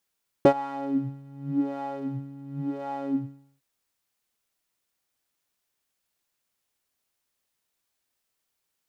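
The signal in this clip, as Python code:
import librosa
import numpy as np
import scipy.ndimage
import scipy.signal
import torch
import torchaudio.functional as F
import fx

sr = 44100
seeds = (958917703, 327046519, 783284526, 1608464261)

y = fx.sub_patch_wobble(sr, seeds[0], note=61, wave='square', wave2='saw', interval_st=0, level2_db=-0.5, sub_db=-7, noise_db=-30.0, kind='bandpass', cutoff_hz=120.0, q=3.3, env_oct=2.0, env_decay_s=0.34, env_sustain_pct=40, attack_ms=1.1, decay_s=0.08, sustain_db=-23.5, release_s=0.55, note_s=2.61, lfo_hz=0.91, wobble_oct=1.8)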